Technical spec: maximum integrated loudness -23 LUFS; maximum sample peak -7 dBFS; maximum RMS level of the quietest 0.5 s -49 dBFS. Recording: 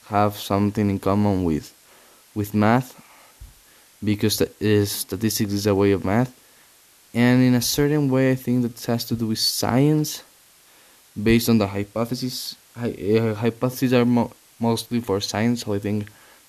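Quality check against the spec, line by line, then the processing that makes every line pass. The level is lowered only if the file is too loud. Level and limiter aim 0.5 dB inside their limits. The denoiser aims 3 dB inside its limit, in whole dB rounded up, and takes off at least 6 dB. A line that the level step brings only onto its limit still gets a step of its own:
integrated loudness -21.5 LUFS: fail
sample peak -4.5 dBFS: fail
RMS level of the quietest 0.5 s -54 dBFS: OK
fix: gain -2 dB; limiter -7.5 dBFS

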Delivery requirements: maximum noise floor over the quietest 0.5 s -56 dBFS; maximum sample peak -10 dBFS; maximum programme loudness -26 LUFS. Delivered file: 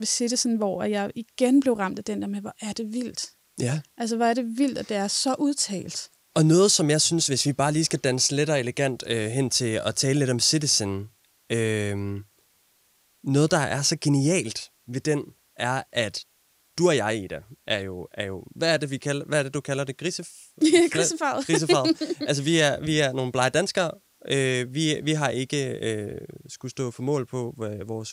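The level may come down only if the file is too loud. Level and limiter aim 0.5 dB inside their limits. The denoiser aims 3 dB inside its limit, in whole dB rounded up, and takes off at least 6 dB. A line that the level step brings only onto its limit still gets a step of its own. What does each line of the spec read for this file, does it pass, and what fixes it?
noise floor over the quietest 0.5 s -64 dBFS: OK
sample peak -6.0 dBFS: fail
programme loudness -24.5 LUFS: fail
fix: gain -2 dB; limiter -10.5 dBFS

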